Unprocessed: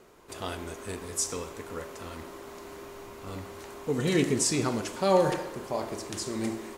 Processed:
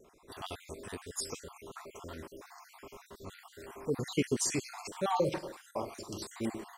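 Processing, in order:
time-frequency cells dropped at random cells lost 52%
tape wow and flutter 24 cents
0:05.17–0:06.13: double-tracking delay 46 ms −13.5 dB
level −3 dB

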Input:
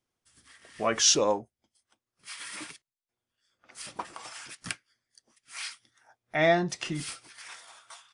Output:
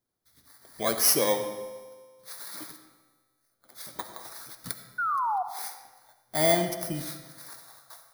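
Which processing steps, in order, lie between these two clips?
samples in bit-reversed order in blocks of 16 samples
notch filter 2,600 Hz, Q 14
tuned comb filter 130 Hz, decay 1.8 s, mix 60%
sound drawn into the spectrogram fall, 0:04.98–0:05.43, 710–1,500 Hz −35 dBFS
on a send: convolution reverb RT60 1.2 s, pre-delay 30 ms, DRR 9 dB
on the sum: level +7.5 dB

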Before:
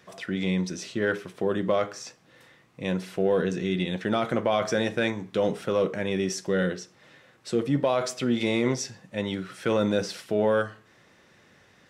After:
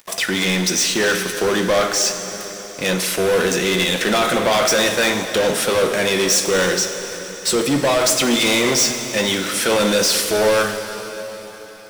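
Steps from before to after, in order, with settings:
RIAA equalisation recording
leveller curve on the samples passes 5
on a send: convolution reverb RT60 4.3 s, pre-delay 9 ms, DRR 6.5 dB
on the sum: level −2 dB

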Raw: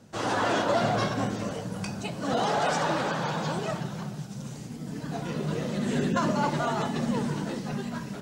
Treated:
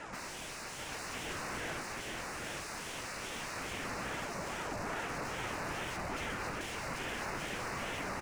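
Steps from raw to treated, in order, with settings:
mains-hum notches 50/100/150/200/250/300/350/400/450/500 Hz
0:03.34–0:03.81: Butterworth high-pass 170 Hz 48 dB per octave
0:05.96–0:06.61: downward expander −18 dBFS
wrap-around overflow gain 31.5 dB
flanger 0.29 Hz, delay 1.1 ms, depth 5.2 ms, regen −66%
0:01.81–0:02.44: wrap-around overflow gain 43.5 dB
downsampling to 22,050 Hz
mid-hump overdrive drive 32 dB, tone 2,200 Hz, clips at −31 dBFS
Butterworth band-reject 3,200 Hz, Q 1.6
single-tap delay 787 ms −3.5 dB
on a send at −11 dB: convolution reverb RT60 1.1 s, pre-delay 137 ms
on the sum: ring modulator whose carrier an LFO sweeps 750 Hz, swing 55%, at 2.4 Hz
level +1 dB

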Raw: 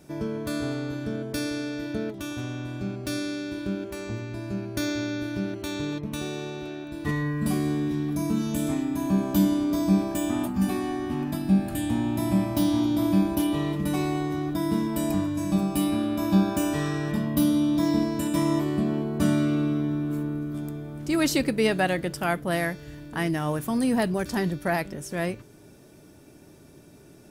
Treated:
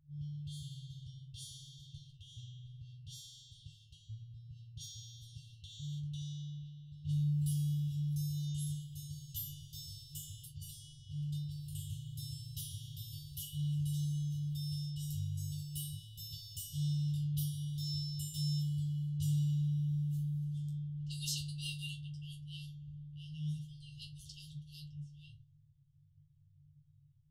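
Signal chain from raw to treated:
resonators tuned to a chord G2 fifth, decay 0.25 s
low-pass that shuts in the quiet parts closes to 680 Hz, open at −28 dBFS
brick-wall band-stop 160–2,700 Hz
level +3 dB

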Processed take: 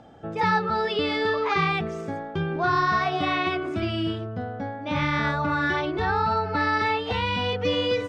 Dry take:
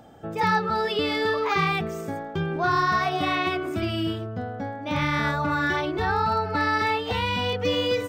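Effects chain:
low-pass filter 5,300 Hz 12 dB per octave

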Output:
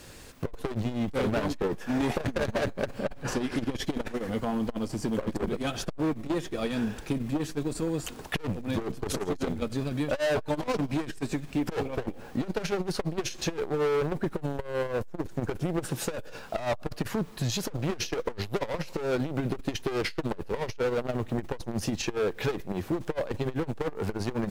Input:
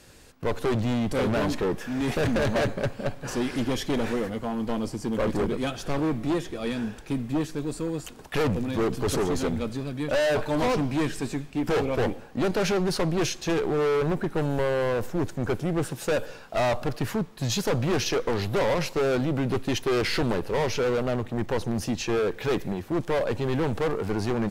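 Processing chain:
downward compressor 6 to 1, threshold −28 dBFS, peak gain reduction 7.5 dB
0:01.73–0:02.27: dynamic equaliser 780 Hz, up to +6 dB, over −48 dBFS, Q 1.2
background noise pink −62 dBFS
0:03.01–0:03.83: high-shelf EQ 5,600 Hz −5 dB
saturating transformer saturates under 150 Hz
level +4 dB

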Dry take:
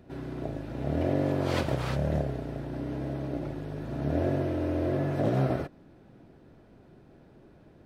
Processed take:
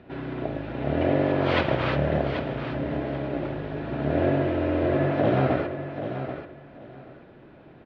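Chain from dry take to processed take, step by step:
low-pass filter 3,200 Hz 24 dB per octave
spectral tilt +2 dB per octave
repeating echo 784 ms, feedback 20%, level −9.5 dB
on a send at −13.5 dB: convolution reverb, pre-delay 57 ms
on the sum: level +7.5 dB

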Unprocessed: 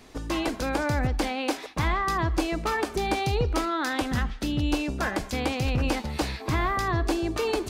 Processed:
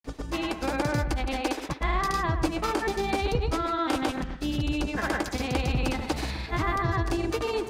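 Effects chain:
granular cloud 100 ms, pitch spread up and down by 0 semitones
bucket-brigade delay 126 ms, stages 2,048, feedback 36%, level −10 dB

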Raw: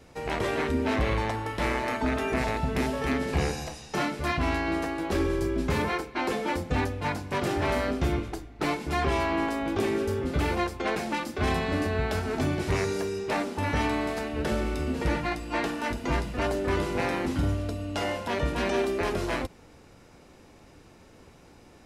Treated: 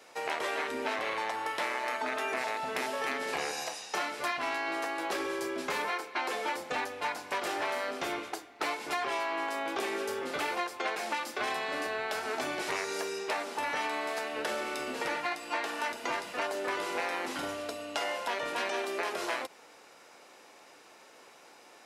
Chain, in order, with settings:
high-pass filter 620 Hz 12 dB per octave
downward compressor, threshold −33 dBFS, peak gain reduction 7.5 dB
level +3.5 dB

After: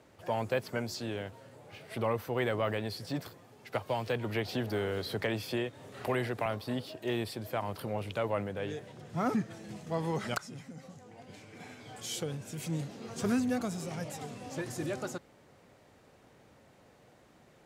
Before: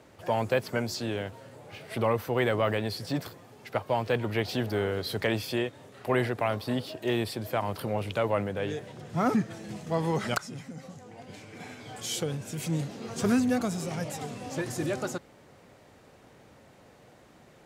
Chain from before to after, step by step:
0:03.73–0:06.46: multiband upward and downward compressor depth 70%
level −5 dB

